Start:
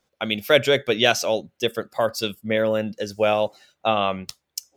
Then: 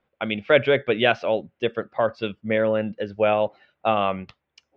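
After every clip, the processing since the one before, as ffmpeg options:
-af "lowpass=f=2.8k:w=0.5412,lowpass=f=2.8k:w=1.3066"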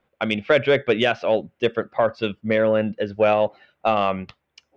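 -af "alimiter=limit=-10dB:level=0:latency=1:release=258,acontrast=74,volume=-3dB"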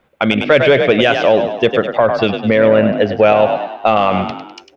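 -filter_complex "[0:a]asplit=2[a][b];[b]asplit=5[c][d][e][f][g];[c]adelay=101,afreqshift=40,volume=-10dB[h];[d]adelay=202,afreqshift=80,volume=-16dB[i];[e]adelay=303,afreqshift=120,volume=-22dB[j];[f]adelay=404,afreqshift=160,volume=-28.1dB[k];[g]adelay=505,afreqshift=200,volume=-34.1dB[l];[h][i][j][k][l]amix=inputs=5:normalize=0[m];[a][m]amix=inputs=2:normalize=0,alimiter=level_in=12dB:limit=-1dB:release=50:level=0:latency=1,volume=-1dB"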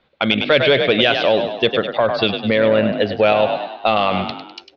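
-af "lowpass=f=4.1k:t=q:w=4.6,volume=-4.5dB"

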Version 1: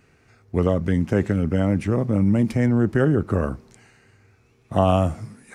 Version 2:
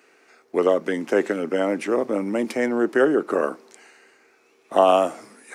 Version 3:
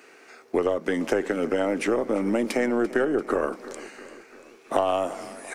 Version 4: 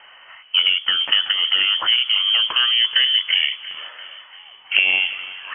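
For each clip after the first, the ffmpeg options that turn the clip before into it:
-af "highpass=f=320:w=0.5412,highpass=f=320:w=1.3066,volume=4.5dB"
-af "aeval=exprs='0.75*(cos(1*acos(clip(val(0)/0.75,-1,1)))-cos(1*PI/2))+0.0211*(cos(6*acos(clip(val(0)/0.75,-1,1)))-cos(6*PI/2))':c=same,acompressor=threshold=-26dB:ratio=6,aecho=1:1:342|684|1026|1368|1710:0.133|0.0773|0.0449|0.026|0.0151,volume=5.5dB"
-af "lowpass=f=2.9k:t=q:w=0.5098,lowpass=f=2.9k:t=q:w=0.6013,lowpass=f=2.9k:t=q:w=0.9,lowpass=f=2.9k:t=q:w=2.563,afreqshift=-3400,volume=6dB"

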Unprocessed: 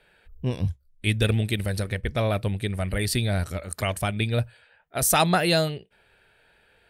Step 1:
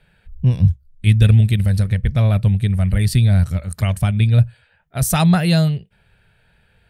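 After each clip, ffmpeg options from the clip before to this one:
-af "lowshelf=f=230:t=q:w=1.5:g=11"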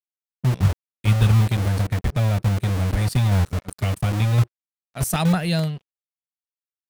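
-filter_complex "[0:a]acrossover=split=120[a][b];[a]acrusher=bits=3:mix=0:aa=0.000001[c];[b]aeval=exprs='sgn(val(0))*max(abs(val(0))-0.0141,0)':c=same[d];[c][d]amix=inputs=2:normalize=0,volume=-4.5dB"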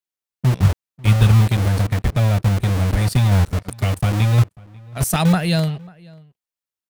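-filter_complex "[0:a]asplit=2[a][b];[b]adelay=542.3,volume=-24dB,highshelf=f=4k:g=-12.2[c];[a][c]amix=inputs=2:normalize=0,volume=3.5dB"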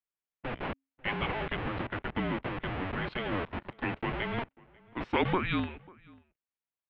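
-af "bandreject=f=50:t=h:w=6,bandreject=f=100:t=h:w=6,highpass=f=380:t=q:w=0.5412,highpass=f=380:t=q:w=1.307,lowpass=f=3.3k:t=q:w=0.5176,lowpass=f=3.3k:t=q:w=0.7071,lowpass=f=3.3k:t=q:w=1.932,afreqshift=-370,volume=-4dB"

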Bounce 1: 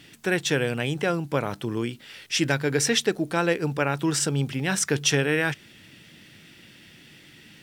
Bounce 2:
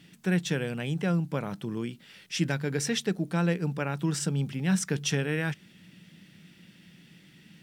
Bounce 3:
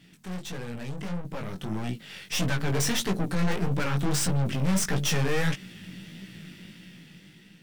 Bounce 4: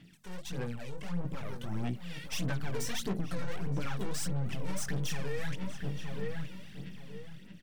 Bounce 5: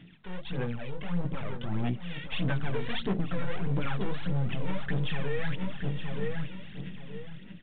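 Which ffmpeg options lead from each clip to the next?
-af "equalizer=f=180:t=o:w=0.48:g=15,volume=-8dB"
-af "aeval=exprs='(tanh(79.4*val(0)+0.65)-tanh(0.65))/79.4':c=same,flanger=delay=15.5:depth=6.7:speed=1.6,dynaudnorm=f=720:g=5:m=11dB,volume=5.5dB"
-filter_complex "[0:a]aphaser=in_gain=1:out_gain=1:delay=2.2:decay=0.65:speed=1.6:type=sinusoidal,asplit=2[a][b];[b]adelay=920,lowpass=f=1.5k:p=1,volume=-9dB,asplit=2[c][d];[d]adelay=920,lowpass=f=1.5k:p=1,volume=0.3,asplit=2[e][f];[f]adelay=920,lowpass=f=1.5k:p=1,volume=0.3[g];[a][c][e][g]amix=inputs=4:normalize=0,alimiter=limit=-16.5dB:level=0:latency=1:release=139,volume=-7.5dB"
-af "volume=4.5dB" -ar 8000 -c:a pcm_alaw

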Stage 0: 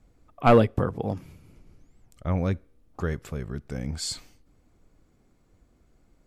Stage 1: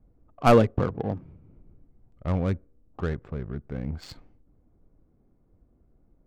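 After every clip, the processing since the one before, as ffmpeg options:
-af "adynamicsmooth=sensitivity=3.5:basefreq=880"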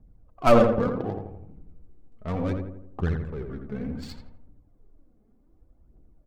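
-filter_complex "[0:a]aphaser=in_gain=1:out_gain=1:delay=4.8:decay=0.61:speed=0.67:type=triangular,asplit=2[a][b];[b]adelay=84,lowpass=f=1.5k:p=1,volume=-4dB,asplit=2[c][d];[d]adelay=84,lowpass=f=1.5k:p=1,volume=0.52,asplit=2[e][f];[f]adelay=84,lowpass=f=1.5k:p=1,volume=0.52,asplit=2[g][h];[h]adelay=84,lowpass=f=1.5k:p=1,volume=0.52,asplit=2[i][j];[j]adelay=84,lowpass=f=1.5k:p=1,volume=0.52,asplit=2[k][l];[l]adelay=84,lowpass=f=1.5k:p=1,volume=0.52,asplit=2[m][n];[n]adelay=84,lowpass=f=1.5k:p=1,volume=0.52[o];[c][e][g][i][k][m][o]amix=inputs=7:normalize=0[p];[a][p]amix=inputs=2:normalize=0,volume=-2.5dB"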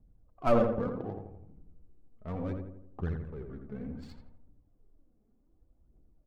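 -af "highshelf=f=2.4k:g=-9,volume=-7.5dB"

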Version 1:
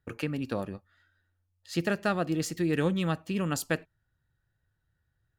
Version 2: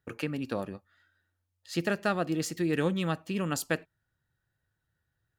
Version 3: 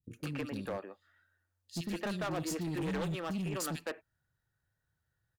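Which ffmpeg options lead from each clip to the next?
-af "lowshelf=f=82:g=-10.5"
-filter_complex "[0:a]acrossover=split=300|2900[a][b][c];[c]adelay=40[d];[b]adelay=160[e];[a][e][d]amix=inputs=3:normalize=0,asoftclip=type=hard:threshold=-30.5dB,volume=-1.5dB"

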